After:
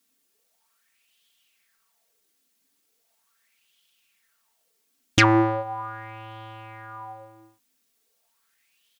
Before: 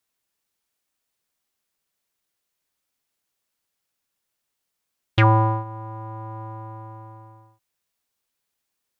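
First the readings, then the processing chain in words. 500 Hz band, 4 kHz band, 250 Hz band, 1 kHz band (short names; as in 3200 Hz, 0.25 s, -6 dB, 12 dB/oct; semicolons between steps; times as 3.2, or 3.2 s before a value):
+1.5 dB, +7.0 dB, +5.0 dB, -2.0 dB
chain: self-modulated delay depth 0.07 ms; high shelf 2200 Hz +7.5 dB; notch 1000 Hz, Q 22; comb 4.4 ms, depth 65%; LFO bell 0.39 Hz 260–3200 Hz +17 dB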